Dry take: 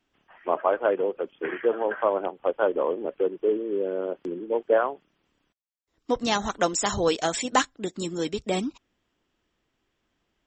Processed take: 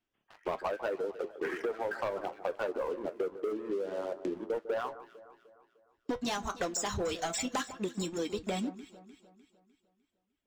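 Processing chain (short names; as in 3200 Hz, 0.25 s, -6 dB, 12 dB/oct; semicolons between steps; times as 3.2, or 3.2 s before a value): reverb removal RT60 1.4 s; sample leveller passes 3; flange 0.22 Hz, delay 8.8 ms, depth 3.2 ms, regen -60%; compressor 6:1, threshold -30 dBFS, peak gain reduction 14 dB; on a send: echo with dull and thin repeats by turns 0.151 s, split 1500 Hz, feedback 66%, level -13 dB; on the sum: gain -2 dB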